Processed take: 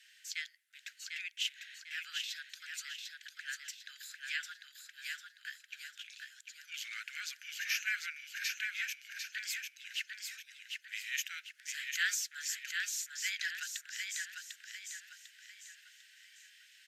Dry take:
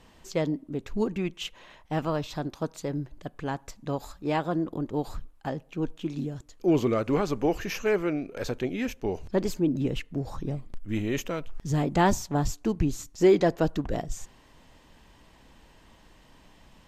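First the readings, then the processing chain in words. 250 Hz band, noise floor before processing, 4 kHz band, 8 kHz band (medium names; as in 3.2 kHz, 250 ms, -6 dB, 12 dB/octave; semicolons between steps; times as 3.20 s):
under -40 dB, -57 dBFS, +2.5 dB, +2.5 dB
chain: steep high-pass 1.5 kHz 96 dB/octave; feedback delay 748 ms, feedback 39%, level -4.5 dB; trim +1 dB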